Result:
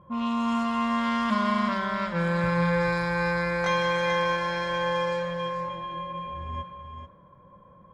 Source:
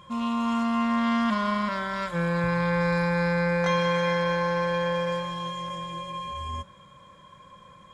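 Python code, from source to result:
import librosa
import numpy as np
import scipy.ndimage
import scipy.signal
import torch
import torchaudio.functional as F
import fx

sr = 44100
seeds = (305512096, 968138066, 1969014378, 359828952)

p1 = fx.env_lowpass(x, sr, base_hz=760.0, full_db=-21.0)
y = p1 + fx.echo_single(p1, sr, ms=438, db=-7.5, dry=0)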